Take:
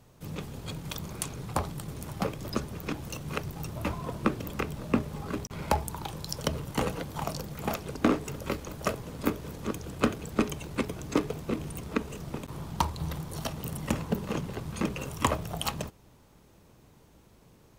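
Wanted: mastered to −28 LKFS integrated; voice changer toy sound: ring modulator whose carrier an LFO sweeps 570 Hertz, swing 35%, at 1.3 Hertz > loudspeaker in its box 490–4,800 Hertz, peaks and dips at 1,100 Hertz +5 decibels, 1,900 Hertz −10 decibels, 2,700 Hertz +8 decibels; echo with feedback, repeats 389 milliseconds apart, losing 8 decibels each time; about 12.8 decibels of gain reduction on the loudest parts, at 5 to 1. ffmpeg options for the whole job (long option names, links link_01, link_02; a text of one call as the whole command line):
ffmpeg -i in.wav -af "acompressor=threshold=-36dB:ratio=5,aecho=1:1:389|778|1167|1556|1945:0.398|0.159|0.0637|0.0255|0.0102,aeval=exprs='val(0)*sin(2*PI*570*n/s+570*0.35/1.3*sin(2*PI*1.3*n/s))':channel_layout=same,highpass=490,equalizer=frequency=1100:width_type=q:width=4:gain=5,equalizer=frequency=1900:width_type=q:width=4:gain=-10,equalizer=frequency=2700:width_type=q:width=4:gain=8,lowpass=frequency=4800:width=0.5412,lowpass=frequency=4800:width=1.3066,volume=16dB" out.wav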